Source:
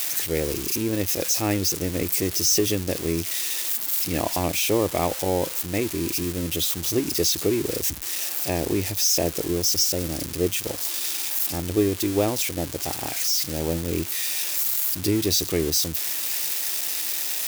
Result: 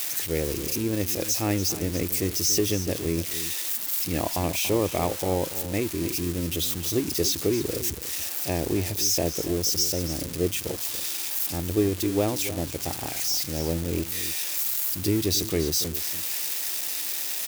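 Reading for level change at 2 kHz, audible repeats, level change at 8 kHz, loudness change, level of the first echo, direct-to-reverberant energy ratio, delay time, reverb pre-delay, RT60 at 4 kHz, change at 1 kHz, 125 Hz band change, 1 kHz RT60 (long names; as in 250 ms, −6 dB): −3.0 dB, 1, −3.0 dB, −2.5 dB, −13.0 dB, no reverb audible, 285 ms, no reverb audible, no reverb audible, −2.5 dB, 0.0 dB, no reverb audible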